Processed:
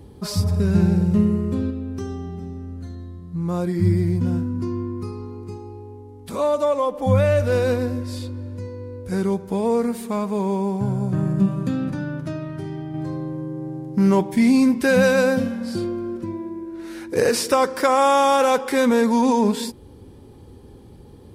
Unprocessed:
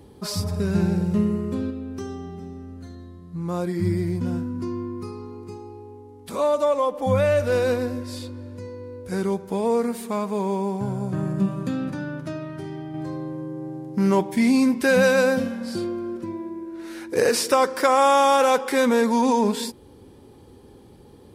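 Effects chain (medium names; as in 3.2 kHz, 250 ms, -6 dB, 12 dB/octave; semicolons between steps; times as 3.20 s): bass shelf 160 Hz +9.5 dB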